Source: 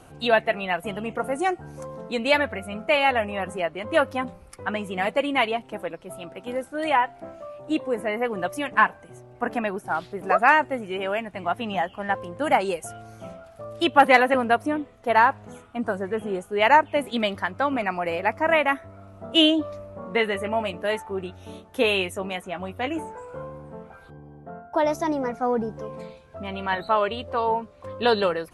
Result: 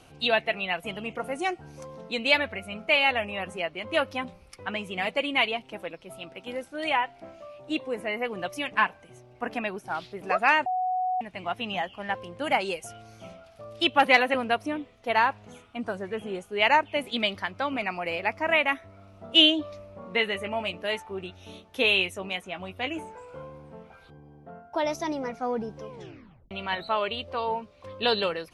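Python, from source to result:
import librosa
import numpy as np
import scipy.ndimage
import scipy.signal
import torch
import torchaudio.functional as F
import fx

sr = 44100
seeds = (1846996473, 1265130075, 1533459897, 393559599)

y = fx.edit(x, sr, fx.bleep(start_s=10.66, length_s=0.55, hz=739.0, db=-18.5),
    fx.tape_stop(start_s=25.9, length_s=0.61), tone=tone)
y = fx.band_shelf(y, sr, hz=3600.0, db=8.0, octaves=1.7)
y = F.gain(torch.from_numpy(y), -5.5).numpy()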